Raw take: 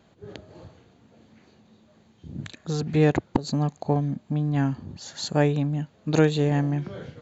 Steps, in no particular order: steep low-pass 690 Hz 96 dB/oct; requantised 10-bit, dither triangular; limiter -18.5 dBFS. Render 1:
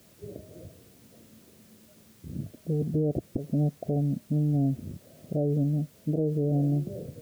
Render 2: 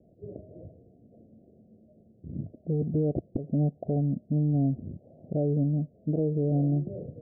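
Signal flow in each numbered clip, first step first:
steep low-pass > requantised > limiter; requantised > steep low-pass > limiter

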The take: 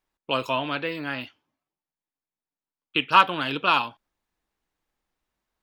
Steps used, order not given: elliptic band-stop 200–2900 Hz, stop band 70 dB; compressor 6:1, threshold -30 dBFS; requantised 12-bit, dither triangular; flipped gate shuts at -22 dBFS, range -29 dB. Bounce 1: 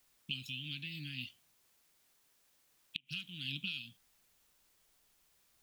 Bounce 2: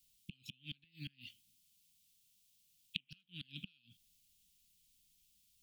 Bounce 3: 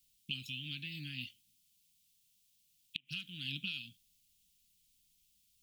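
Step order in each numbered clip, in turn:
compressor > elliptic band-stop > requantised > flipped gate; requantised > compressor > flipped gate > elliptic band-stop; compressor > requantised > elliptic band-stop > flipped gate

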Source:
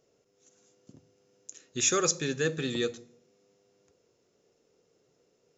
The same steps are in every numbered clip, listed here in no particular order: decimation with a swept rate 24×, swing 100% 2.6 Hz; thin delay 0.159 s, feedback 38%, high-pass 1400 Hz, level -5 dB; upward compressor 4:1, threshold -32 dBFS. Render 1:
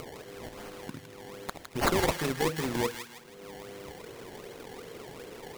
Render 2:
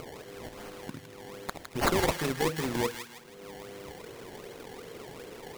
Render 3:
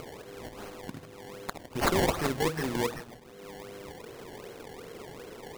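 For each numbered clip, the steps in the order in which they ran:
decimation with a swept rate > upward compressor > thin delay; upward compressor > decimation with a swept rate > thin delay; upward compressor > thin delay > decimation with a swept rate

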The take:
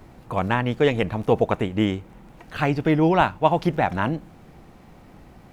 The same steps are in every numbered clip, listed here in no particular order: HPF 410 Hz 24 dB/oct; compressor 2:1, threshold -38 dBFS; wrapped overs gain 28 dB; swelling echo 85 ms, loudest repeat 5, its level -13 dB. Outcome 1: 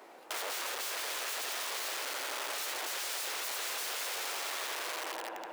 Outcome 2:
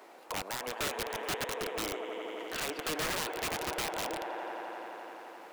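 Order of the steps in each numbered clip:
swelling echo > wrapped overs > compressor > HPF; HPF > compressor > swelling echo > wrapped overs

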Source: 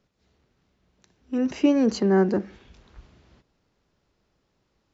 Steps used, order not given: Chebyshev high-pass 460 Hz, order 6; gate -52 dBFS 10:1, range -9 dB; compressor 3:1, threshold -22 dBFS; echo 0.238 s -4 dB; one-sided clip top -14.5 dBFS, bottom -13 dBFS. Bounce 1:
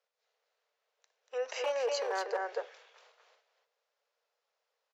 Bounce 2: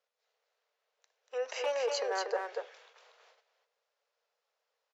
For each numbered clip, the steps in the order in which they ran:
gate > echo > one-sided clip > compressor > Chebyshev high-pass; one-sided clip > compressor > echo > gate > Chebyshev high-pass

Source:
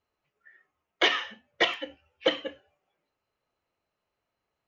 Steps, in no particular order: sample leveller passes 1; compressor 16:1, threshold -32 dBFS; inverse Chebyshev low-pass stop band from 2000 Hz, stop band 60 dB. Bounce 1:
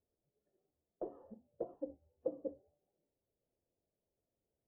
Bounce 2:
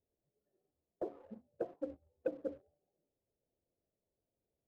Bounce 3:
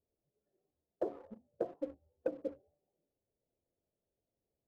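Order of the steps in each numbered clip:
sample leveller > compressor > inverse Chebyshev low-pass; compressor > inverse Chebyshev low-pass > sample leveller; inverse Chebyshev low-pass > sample leveller > compressor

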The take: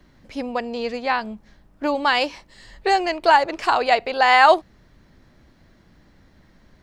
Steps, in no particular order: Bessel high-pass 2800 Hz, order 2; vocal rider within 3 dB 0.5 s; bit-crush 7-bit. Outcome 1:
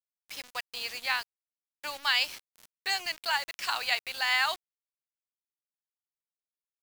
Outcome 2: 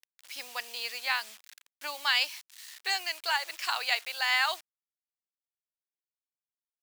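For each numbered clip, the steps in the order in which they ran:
vocal rider > Bessel high-pass > bit-crush; vocal rider > bit-crush > Bessel high-pass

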